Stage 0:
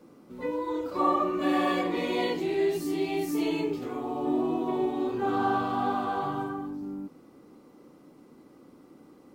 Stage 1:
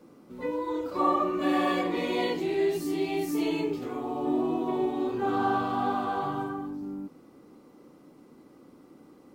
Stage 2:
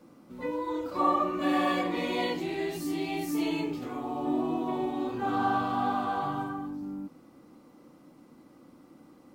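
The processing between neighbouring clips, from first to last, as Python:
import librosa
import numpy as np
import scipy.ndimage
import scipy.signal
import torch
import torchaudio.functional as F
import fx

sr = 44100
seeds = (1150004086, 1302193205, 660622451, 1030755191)

y1 = x
y2 = fx.peak_eq(y1, sr, hz=410.0, db=-10.0, octaves=0.27)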